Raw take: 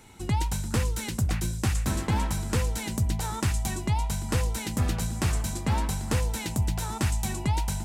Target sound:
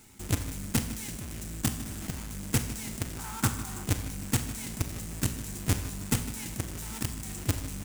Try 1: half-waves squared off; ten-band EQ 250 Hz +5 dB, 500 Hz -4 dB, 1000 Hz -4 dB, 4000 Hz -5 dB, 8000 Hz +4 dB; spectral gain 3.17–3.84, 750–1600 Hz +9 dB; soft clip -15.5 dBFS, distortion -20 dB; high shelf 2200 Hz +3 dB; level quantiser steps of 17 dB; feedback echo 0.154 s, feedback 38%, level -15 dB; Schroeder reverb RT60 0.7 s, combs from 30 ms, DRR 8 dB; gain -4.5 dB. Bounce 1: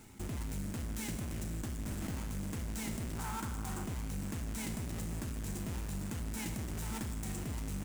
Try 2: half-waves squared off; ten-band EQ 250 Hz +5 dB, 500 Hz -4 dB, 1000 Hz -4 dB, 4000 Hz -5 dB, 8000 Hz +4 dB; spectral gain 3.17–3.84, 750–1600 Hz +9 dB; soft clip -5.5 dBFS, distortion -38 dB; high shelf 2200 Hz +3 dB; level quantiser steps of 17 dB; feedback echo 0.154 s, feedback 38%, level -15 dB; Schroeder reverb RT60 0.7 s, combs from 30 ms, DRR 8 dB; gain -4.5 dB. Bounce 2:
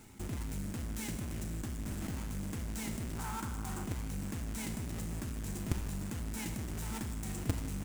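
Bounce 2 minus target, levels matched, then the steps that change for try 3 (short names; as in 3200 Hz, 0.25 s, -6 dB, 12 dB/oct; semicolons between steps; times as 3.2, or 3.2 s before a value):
4000 Hz band -3.5 dB
change: high shelf 2200 Hz +11 dB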